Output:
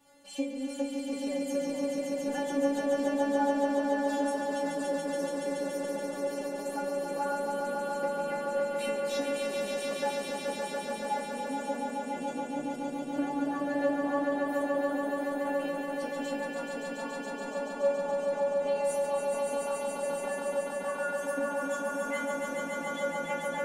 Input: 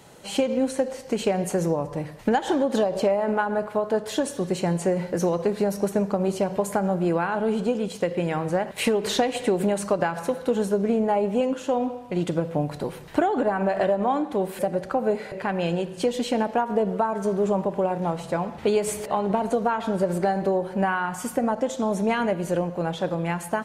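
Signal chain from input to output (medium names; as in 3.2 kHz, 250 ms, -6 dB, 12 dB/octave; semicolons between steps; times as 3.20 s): inharmonic resonator 280 Hz, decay 0.42 s, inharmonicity 0.002; echo with a slow build-up 142 ms, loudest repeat 5, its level -4.5 dB; trim +3.5 dB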